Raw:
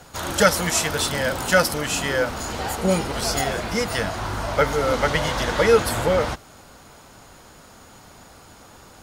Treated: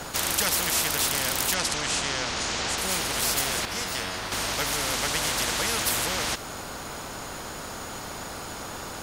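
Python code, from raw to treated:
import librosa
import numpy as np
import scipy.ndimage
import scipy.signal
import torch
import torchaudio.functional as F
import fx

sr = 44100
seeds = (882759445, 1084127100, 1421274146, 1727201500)

y = fx.lowpass(x, sr, hz=7100.0, slope=24, at=(1.54, 2.78))
y = fx.comb_fb(y, sr, f0_hz=92.0, decay_s=0.5, harmonics='all', damping=0.0, mix_pct=80, at=(3.65, 4.32))
y = fx.spectral_comp(y, sr, ratio=4.0)
y = y * 10.0 ** (-5.0 / 20.0)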